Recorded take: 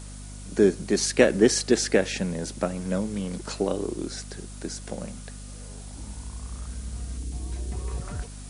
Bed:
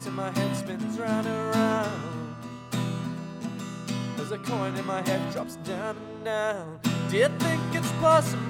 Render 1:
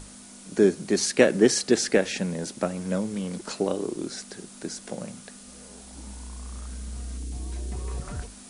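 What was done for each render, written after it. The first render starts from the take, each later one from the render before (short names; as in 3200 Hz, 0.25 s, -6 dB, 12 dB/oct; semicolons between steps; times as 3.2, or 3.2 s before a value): notches 50/100/150 Hz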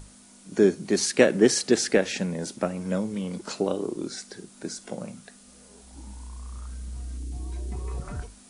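noise print and reduce 6 dB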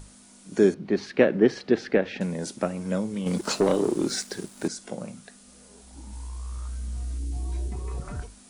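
0.74–2.21 air absorption 320 m; 3.26–4.68 sample leveller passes 2; 6.11–7.68 doubler 18 ms -3.5 dB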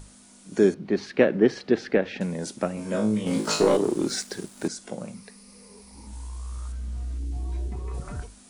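2.75–3.77 flutter echo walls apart 3.2 m, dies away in 0.37 s; 5.14–6.07 ripple EQ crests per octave 0.87, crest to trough 11 dB; 6.72–7.94 high shelf 6500 Hz -12 dB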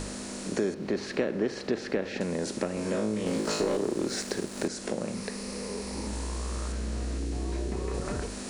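per-bin compression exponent 0.6; compressor 2.5:1, threshold -30 dBFS, peak gain reduction 13 dB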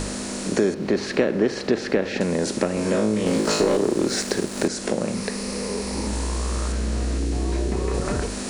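gain +8 dB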